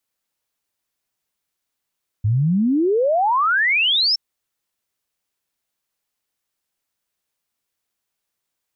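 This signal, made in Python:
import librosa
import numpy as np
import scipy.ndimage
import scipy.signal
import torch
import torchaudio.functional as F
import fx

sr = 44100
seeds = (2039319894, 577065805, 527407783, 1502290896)

y = fx.ess(sr, length_s=1.92, from_hz=99.0, to_hz=5500.0, level_db=-14.5)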